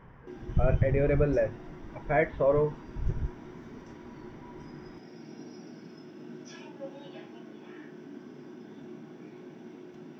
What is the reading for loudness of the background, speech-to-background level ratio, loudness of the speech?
-47.0 LUFS, 18.5 dB, -28.5 LUFS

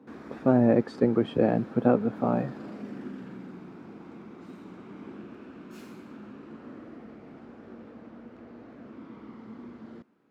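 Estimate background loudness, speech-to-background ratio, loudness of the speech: -44.5 LUFS, 19.5 dB, -25.0 LUFS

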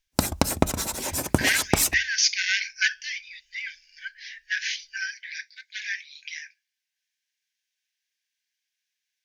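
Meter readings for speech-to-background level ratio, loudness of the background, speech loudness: -2.0 dB, -25.0 LUFS, -27.0 LUFS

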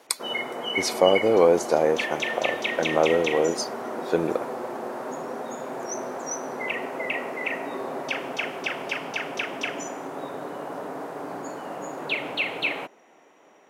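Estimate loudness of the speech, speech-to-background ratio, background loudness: -24.0 LUFS, 6.0 dB, -30.0 LUFS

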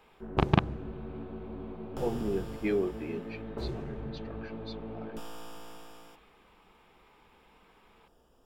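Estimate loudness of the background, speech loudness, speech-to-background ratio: -41.0 LUFS, -32.5 LUFS, 8.5 dB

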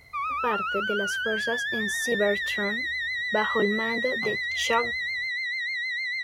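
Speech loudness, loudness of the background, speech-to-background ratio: -29.5 LUFS, -27.5 LUFS, -2.0 dB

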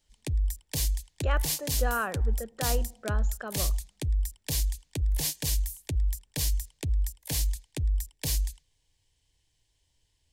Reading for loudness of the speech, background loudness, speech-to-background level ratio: -35.5 LUFS, -31.0 LUFS, -4.5 dB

